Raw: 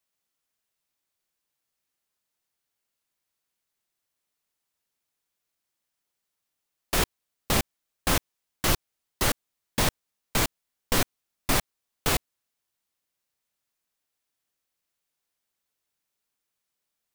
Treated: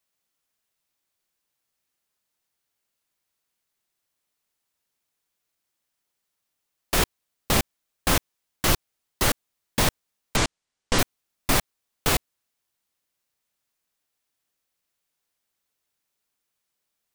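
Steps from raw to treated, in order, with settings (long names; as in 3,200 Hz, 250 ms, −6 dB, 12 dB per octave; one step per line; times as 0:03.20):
0:10.36–0:10.99: low-pass filter 8,400 Hz 24 dB per octave
level +2.5 dB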